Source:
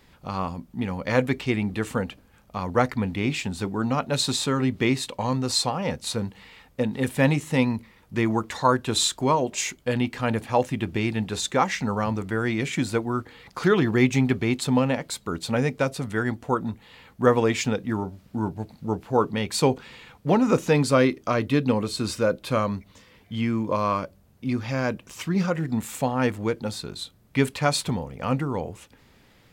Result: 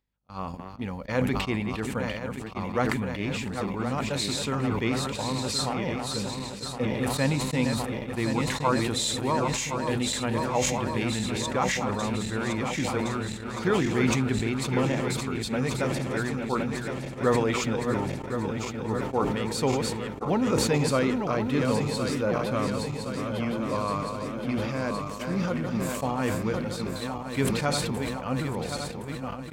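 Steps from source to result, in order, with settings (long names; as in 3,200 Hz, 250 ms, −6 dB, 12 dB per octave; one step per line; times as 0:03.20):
feedback delay that plays each chunk backwards 533 ms, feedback 80%, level −6.5 dB
upward compression, threshold −39 dBFS
mains hum 50 Hz, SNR 23 dB
noise gate −28 dBFS, range −35 dB
level that may fall only so fast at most 32 dB per second
level −6 dB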